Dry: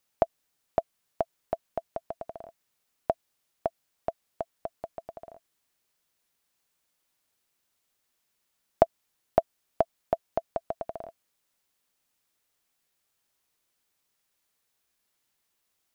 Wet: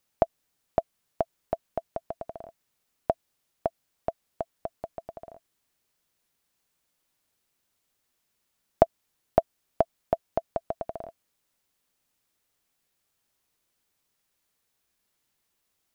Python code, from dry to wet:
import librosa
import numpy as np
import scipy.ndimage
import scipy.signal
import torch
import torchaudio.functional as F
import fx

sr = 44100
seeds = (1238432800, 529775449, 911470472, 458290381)

y = fx.low_shelf(x, sr, hz=380.0, db=4.5)